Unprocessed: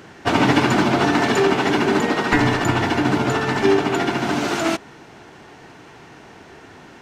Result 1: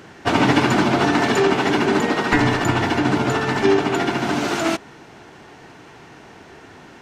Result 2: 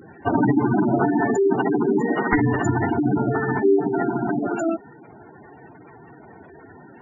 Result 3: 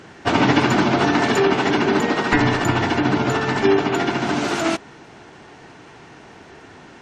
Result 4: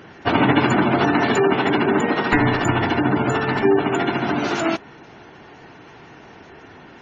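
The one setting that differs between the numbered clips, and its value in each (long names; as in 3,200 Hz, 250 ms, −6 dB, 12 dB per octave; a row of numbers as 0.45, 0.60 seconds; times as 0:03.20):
gate on every frequency bin, under each frame's peak: −55, −10, −40, −25 decibels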